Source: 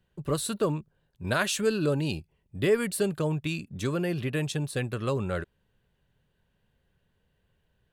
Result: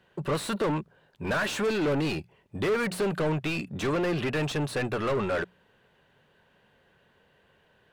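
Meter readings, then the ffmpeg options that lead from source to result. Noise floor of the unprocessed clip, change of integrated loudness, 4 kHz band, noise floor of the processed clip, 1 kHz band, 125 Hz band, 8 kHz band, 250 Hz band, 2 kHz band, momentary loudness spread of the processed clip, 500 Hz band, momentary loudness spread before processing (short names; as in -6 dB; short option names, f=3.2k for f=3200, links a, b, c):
-73 dBFS, 0.0 dB, 0.0 dB, -65 dBFS, +4.0 dB, -2.0 dB, -6.0 dB, +0.5 dB, +2.5 dB, 6 LU, +0.5 dB, 9 LU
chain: -filter_complex "[0:a]asplit=2[a][b];[b]highpass=f=720:p=1,volume=31dB,asoftclip=type=tanh:threshold=-12dB[c];[a][c]amix=inputs=2:normalize=0,lowpass=f=1.6k:p=1,volume=-6dB,bandreject=f=60:t=h:w=6,bandreject=f=120:t=h:w=6,bandreject=f=180:t=h:w=6,volume=-6.5dB"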